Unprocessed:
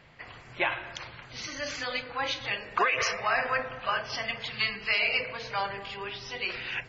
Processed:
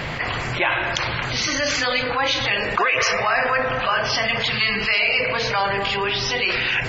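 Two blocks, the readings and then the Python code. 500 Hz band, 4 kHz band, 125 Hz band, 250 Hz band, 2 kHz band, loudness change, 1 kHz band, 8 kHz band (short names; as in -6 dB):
+11.0 dB, +11.5 dB, +16.0 dB, +13.5 dB, +10.0 dB, +10.0 dB, +9.0 dB, n/a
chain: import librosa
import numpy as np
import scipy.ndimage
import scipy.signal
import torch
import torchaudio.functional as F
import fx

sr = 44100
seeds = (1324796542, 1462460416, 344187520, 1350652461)

y = fx.env_flatten(x, sr, amount_pct=70)
y = y * librosa.db_to_amplitude(4.0)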